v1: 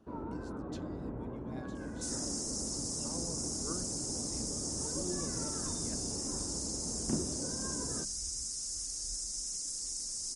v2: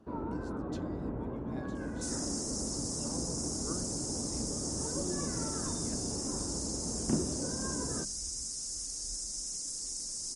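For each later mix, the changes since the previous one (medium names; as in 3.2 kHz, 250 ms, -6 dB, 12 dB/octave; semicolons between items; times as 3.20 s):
first sound +3.5 dB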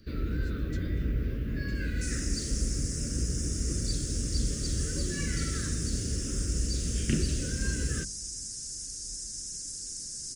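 first sound: remove band-pass filter 280 Hz, Q 1.2; master: add Butterworth band-stop 880 Hz, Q 0.56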